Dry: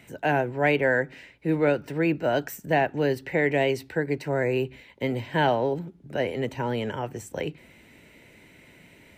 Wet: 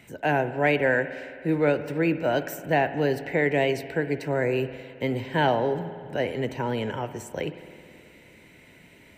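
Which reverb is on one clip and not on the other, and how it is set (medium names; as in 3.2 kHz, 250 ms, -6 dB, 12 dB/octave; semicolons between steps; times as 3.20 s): spring tank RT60 2.3 s, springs 53 ms, chirp 70 ms, DRR 11.5 dB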